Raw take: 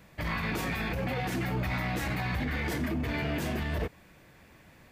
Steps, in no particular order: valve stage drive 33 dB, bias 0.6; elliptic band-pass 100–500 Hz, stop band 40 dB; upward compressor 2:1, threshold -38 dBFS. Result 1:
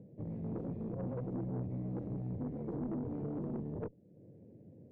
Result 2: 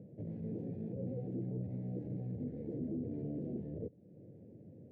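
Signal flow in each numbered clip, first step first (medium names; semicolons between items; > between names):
upward compressor > elliptic band-pass > valve stage; valve stage > upward compressor > elliptic band-pass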